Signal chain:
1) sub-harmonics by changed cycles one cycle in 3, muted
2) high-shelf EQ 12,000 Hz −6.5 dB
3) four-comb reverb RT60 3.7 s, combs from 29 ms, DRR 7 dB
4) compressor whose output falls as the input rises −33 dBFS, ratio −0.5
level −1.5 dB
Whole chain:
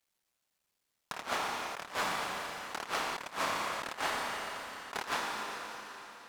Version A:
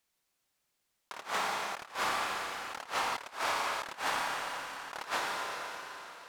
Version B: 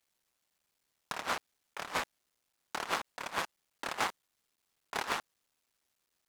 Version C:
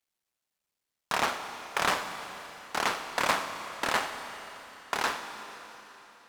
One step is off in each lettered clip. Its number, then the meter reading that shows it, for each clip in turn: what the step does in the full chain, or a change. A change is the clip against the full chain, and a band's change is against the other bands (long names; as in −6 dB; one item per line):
1, 125 Hz band −4.0 dB
3, change in integrated loudness −1.5 LU
4, change in crest factor +5.5 dB